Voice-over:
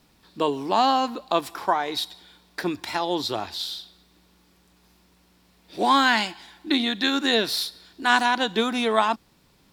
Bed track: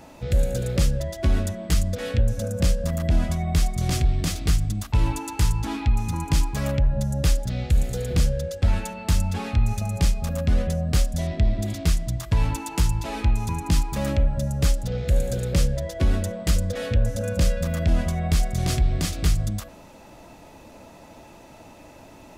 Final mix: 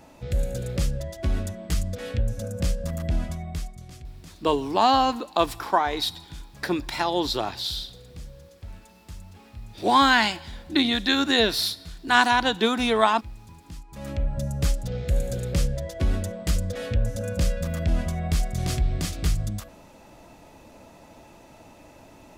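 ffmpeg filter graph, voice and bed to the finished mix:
ffmpeg -i stem1.wav -i stem2.wav -filter_complex "[0:a]adelay=4050,volume=1dB[link_01];[1:a]volume=13dB,afade=type=out:start_time=3.1:duration=0.76:silence=0.158489,afade=type=in:start_time=13.87:duration=0.52:silence=0.133352[link_02];[link_01][link_02]amix=inputs=2:normalize=0" out.wav

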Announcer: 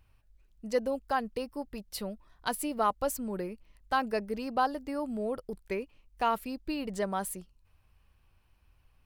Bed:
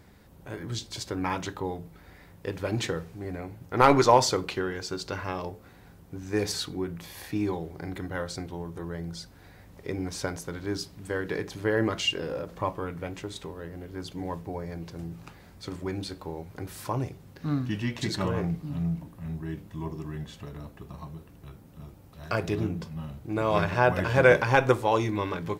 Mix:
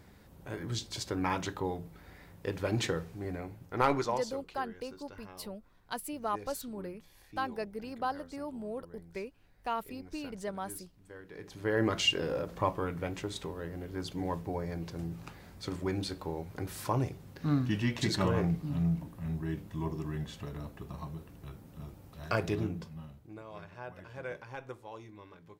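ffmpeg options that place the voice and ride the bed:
ffmpeg -i stem1.wav -i stem2.wav -filter_complex "[0:a]adelay=3450,volume=-6dB[link_01];[1:a]volume=16dB,afade=type=out:start_time=3.25:duration=0.98:silence=0.149624,afade=type=in:start_time=11.33:duration=0.68:silence=0.125893,afade=type=out:start_time=22.09:duration=1.35:silence=0.0794328[link_02];[link_01][link_02]amix=inputs=2:normalize=0" out.wav

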